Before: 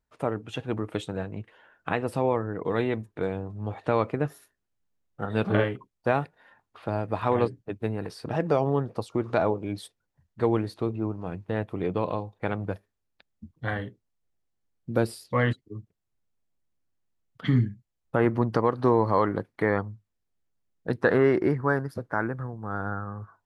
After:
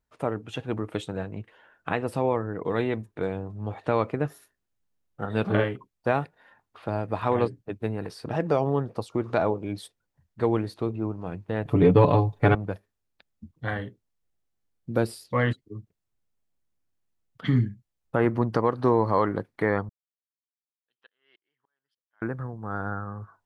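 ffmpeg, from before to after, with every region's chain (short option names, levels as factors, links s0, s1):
-filter_complex "[0:a]asettb=1/sr,asplit=3[s0][s1][s2];[s0]atrim=end=11.654[s3];[s1]atrim=start=11.65:end=12.55,asetpts=PTS-STARTPTS,afade=t=in:d=0.004:c=qsin,afade=t=out:st=0.896:d=0.004:c=qsin,lowshelf=f=190:g=9.5,aecho=1:1:7:0.81,atrim=end_sample=39690,acontrast=47[s4];[s2]atrim=start=12.546[s5];[s3][s4]acrossfade=d=0.004:c1=hsin:c2=qsin[s6];[s6][s5]acrossfade=d=0.004:c1=qsin:c2=hsin,asettb=1/sr,asplit=3[s7][s8][s9];[s7]atrim=end=19.894[s10];[s8]atrim=start=19.89:end=22.22,asetpts=PTS-STARTPTS,afade=t=in:d=0.004:c=qsin,afade=t=out:st=2.326:d=0.004:c=qsin,bandpass=f=3100:t=q:w=18,aeval=exprs='val(0)*pow(10,-36*if(lt(mod(-3.4*n/s,1),2*abs(-3.4)/1000),1-mod(-3.4*n/s,1)/(2*abs(-3.4)/1000),(mod(-3.4*n/s,1)-2*abs(-3.4)/1000)/(1-2*abs(-3.4)/1000))/20)':c=same[s11];[s9]atrim=start=22.216[s12];[s10][s11]acrossfade=d=0.004:c1=hsin:c2=qsin[s13];[s13][s12]acrossfade=d=0.004:c1=qsin:c2=hsin"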